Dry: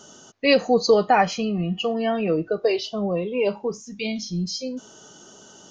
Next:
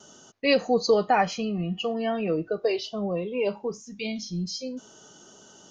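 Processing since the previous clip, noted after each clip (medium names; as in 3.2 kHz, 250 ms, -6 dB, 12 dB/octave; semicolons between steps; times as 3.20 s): gate with hold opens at -42 dBFS; trim -4 dB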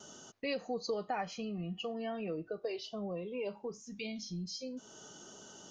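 compression 2:1, threshold -43 dBFS, peak gain reduction 14.5 dB; trim -1.5 dB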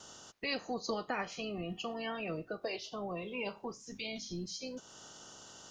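spectral peaks clipped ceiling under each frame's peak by 15 dB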